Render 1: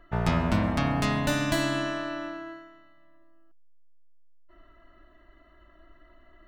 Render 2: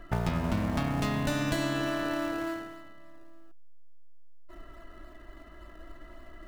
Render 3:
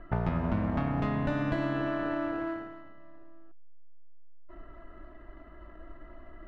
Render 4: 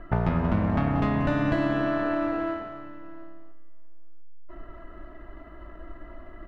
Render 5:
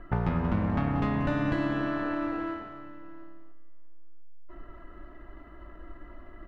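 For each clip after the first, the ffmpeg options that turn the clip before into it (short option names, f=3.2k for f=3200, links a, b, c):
-filter_complex "[0:a]asplit=2[a][b];[b]acrusher=samples=28:mix=1:aa=0.000001:lfo=1:lforange=28:lforate=3.5,volume=-8.5dB[c];[a][c]amix=inputs=2:normalize=0,acompressor=threshold=-34dB:ratio=4,volume=6dB"
-af "lowpass=1.8k"
-af "aecho=1:1:183|704:0.266|0.112,volume=5dB"
-af "bandreject=f=650:w=12,volume=-3dB"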